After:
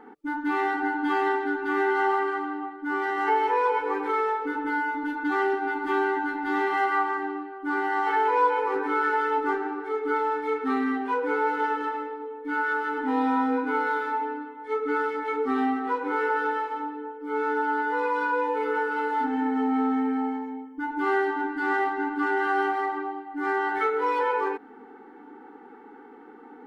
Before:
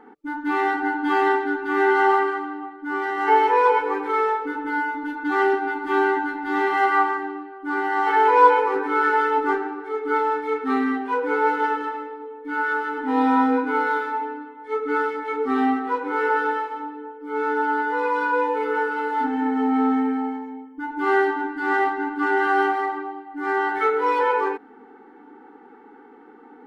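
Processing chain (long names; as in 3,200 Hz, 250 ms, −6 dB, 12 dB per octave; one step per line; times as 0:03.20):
downward compressor 2 to 1, threshold −25 dBFS, peak gain reduction 9 dB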